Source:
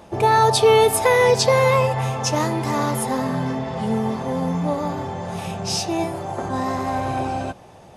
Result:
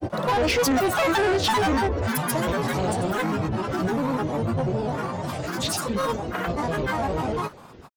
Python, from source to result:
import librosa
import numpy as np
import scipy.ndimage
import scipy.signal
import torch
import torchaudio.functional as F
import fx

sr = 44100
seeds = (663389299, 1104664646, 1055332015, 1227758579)

y = fx.granulator(x, sr, seeds[0], grain_ms=100.0, per_s=20.0, spray_ms=100.0, spread_st=12)
y = 10.0 ** (-19.0 / 20.0) * np.tanh(y / 10.0 ** (-19.0 / 20.0))
y = y * librosa.db_to_amplitude(1.0)